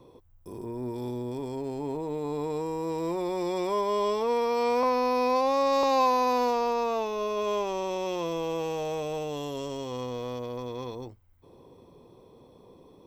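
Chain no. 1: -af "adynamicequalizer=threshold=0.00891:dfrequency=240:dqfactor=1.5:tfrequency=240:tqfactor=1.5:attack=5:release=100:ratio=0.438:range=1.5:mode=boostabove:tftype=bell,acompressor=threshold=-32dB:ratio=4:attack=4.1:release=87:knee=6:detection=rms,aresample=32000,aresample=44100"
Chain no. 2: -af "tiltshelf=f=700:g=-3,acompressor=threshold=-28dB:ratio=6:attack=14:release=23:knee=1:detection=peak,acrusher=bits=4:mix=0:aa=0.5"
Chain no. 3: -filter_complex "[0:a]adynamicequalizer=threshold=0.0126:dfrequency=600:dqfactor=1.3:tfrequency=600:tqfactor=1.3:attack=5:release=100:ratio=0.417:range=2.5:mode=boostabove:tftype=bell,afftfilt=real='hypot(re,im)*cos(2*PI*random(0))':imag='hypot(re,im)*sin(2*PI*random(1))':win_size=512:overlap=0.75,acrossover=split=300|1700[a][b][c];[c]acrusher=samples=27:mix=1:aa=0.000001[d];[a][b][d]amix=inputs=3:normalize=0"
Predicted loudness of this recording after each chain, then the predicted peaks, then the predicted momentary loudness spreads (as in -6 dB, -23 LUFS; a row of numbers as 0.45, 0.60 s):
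-36.0, -29.5, -32.0 LUFS; -24.5, -17.5, -14.5 dBFS; 20, 13, 13 LU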